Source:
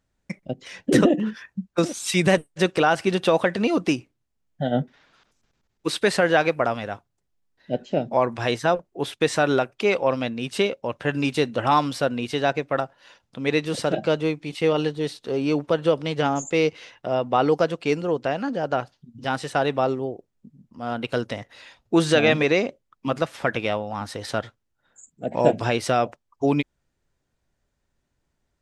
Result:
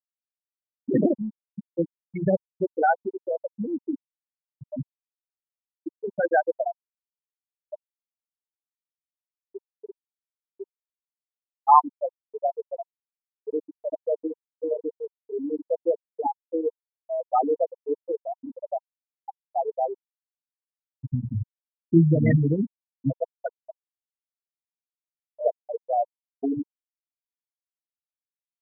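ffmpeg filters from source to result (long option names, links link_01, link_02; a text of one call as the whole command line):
ffmpeg -i in.wav -filter_complex "[0:a]asettb=1/sr,asplit=3[link_01][link_02][link_03];[link_01]atrim=end=2.964[link_04];[link_02]atrim=start=2.96:end=6.09,asetpts=PTS-STARTPTS,afade=type=in:duration=0.004:curve=qsin,afade=type=out:start_time=3.126:duration=0.004:curve=qsin,asoftclip=type=hard:threshold=-18dB[link_05];[link_03]atrim=start=6.086[link_06];[link_04][link_05]acrossfade=duration=0.004:curve1=hsin:curve2=qsin[link_07];[link_07][link_06]acrossfade=duration=0.004:curve1=qsin:curve2=hsin,asettb=1/sr,asplit=3[link_08][link_09][link_10];[link_08]atrim=end=7.744[link_11];[link_09]atrim=start=7.74:end=11.64,asetpts=PTS-STARTPTS,afade=type=in:duration=0.004:curve=qsin,afade=type=out:start_time=3.896:duration=0.004:curve=qsin,acompressor=threshold=-22dB:ratio=10:attack=3.2:release=140:knee=1:detection=peak[link_12];[link_10]atrim=start=11.636[link_13];[link_11][link_12]acrossfade=duration=0.004:curve1=hsin:curve2=qsin[link_14];[link_14][link_13]acrossfade=duration=0.004:curve1=qsin:curve2=hsin,asplit=3[link_15][link_16][link_17];[link_15]afade=type=out:start_time=21.03:duration=0.02[link_18];[link_16]asubboost=boost=9.5:cutoff=170,afade=type=in:start_time=21.03:duration=0.02,afade=type=out:start_time=23.09:duration=0.02[link_19];[link_17]afade=type=in:start_time=23.09:duration=0.02[link_20];[link_18][link_19][link_20]amix=inputs=3:normalize=0,asplit=2[link_21][link_22];[link_21]atrim=end=24.19,asetpts=PTS-STARTPTS,afade=type=out:start_time=24.186:duration=0.004:curve=hsin[link_23];[link_22]atrim=start=24.19,asetpts=PTS-STARTPTS,afade=type=in:duration=1.56[link_24];[link_23][link_24]concat=n=2:v=0:a=1,bandreject=frequency=60:width_type=h:width=6,bandreject=frequency=120:width_type=h:width=6,bandreject=frequency=180:width_type=h:width=6,bandreject=frequency=240:width_type=h:width=6,bandreject=frequency=300:width_type=h:width=6,bandreject=frequency=360:width_type=h:width=6,bandreject=frequency=420:width_type=h:width=6,bandreject=frequency=480:width_type=h:width=6,bandreject=frequency=540:width_type=h:width=6,afftfilt=real='re*gte(hypot(re,im),0.562)':imag='im*gte(hypot(re,im),0.562)':win_size=1024:overlap=0.75,equalizer=frequency=940:width_type=o:width=0.36:gain=14,volume=-2.5dB" out.wav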